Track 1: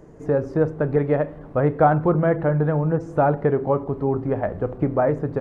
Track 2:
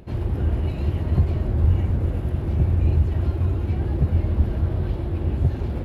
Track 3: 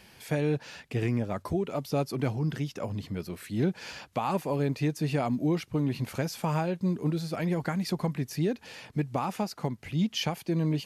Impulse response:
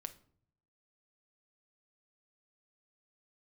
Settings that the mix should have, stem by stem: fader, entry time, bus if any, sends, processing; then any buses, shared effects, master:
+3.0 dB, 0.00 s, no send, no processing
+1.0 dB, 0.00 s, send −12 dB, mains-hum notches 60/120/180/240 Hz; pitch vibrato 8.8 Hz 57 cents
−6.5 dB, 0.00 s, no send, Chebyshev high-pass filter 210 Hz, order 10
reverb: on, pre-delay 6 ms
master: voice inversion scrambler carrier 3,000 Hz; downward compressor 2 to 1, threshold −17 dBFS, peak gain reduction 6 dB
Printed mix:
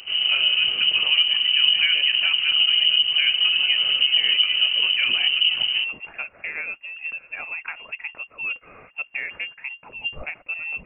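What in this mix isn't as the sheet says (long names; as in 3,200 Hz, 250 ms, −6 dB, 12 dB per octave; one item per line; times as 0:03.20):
stem 1 +3.0 dB → −5.0 dB
stem 3 −6.5 dB → +1.5 dB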